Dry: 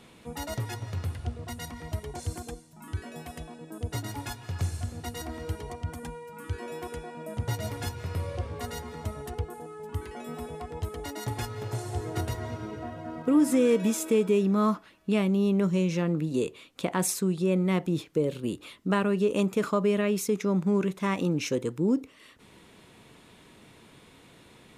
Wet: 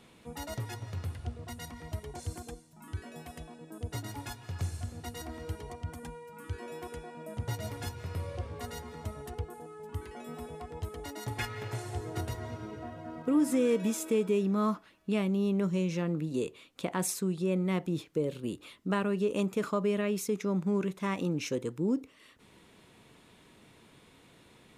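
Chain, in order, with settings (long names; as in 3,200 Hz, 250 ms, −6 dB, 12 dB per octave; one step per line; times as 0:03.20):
0:11.38–0:11.97: parametric band 2,100 Hz +13.5 dB → +4 dB 1.3 octaves
level −4.5 dB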